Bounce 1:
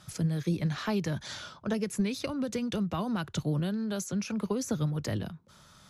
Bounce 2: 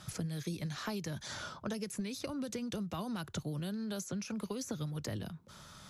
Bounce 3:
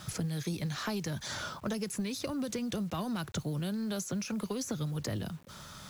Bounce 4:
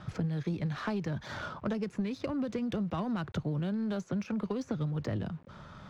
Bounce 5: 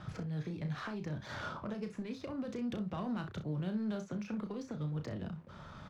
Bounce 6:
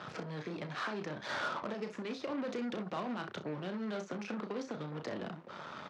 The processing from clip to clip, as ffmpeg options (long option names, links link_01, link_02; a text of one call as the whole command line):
ffmpeg -i in.wav -filter_complex "[0:a]acrossover=split=2000|4800[link_01][link_02][link_03];[link_01]acompressor=threshold=-41dB:ratio=4[link_04];[link_02]acompressor=threshold=-58dB:ratio=4[link_05];[link_03]acompressor=threshold=-49dB:ratio=4[link_06];[link_04][link_05][link_06]amix=inputs=3:normalize=0,volume=3dB" out.wav
ffmpeg -i in.wav -filter_complex "[0:a]asplit=2[link_01][link_02];[link_02]asoftclip=type=tanh:threshold=-39.5dB,volume=-5dB[link_03];[link_01][link_03]amix=inputs=2:normalize=0,acrusher=bits=9:mix=0:aa=0.000001,volume=1.5dB" out.wav
ffmpeg -i in.wav -af "adynamicsmooth=sensitivity=3:basefreq=1900,volume=2dB" out.wav
ffmpeg -i in.wav -filter_complex "[0:a]alimiter=level_in=6dB:limit=-24dB:level=0:latency=1:release=440,volume=-6dB,asplit=2[link_01][link_02];[link_02]aecho=0:1:33|63:0.422|0.211[link_03];[link_01][link_03]amix=inputs=2:normalize=0,volume=-1.5dB" out.wav
ffmpeg -i in.wav -af "alimiter=level_in=9.5dB:limit=-24dB:level=0:latency=1:release=125,volume=-9.5dB,aeval=exprs='0.0224*(cos(1*acos(clip(val(0)/0.0224,-1,1)))-cos(1*PI/2))+0.00178*(cos(8*acos(clip(val(0)/0.0224,-1,1)))-cos(8*PI/2))':channel_layout=same,highpass=310,lowpass=5900,volume=7dB" out.wav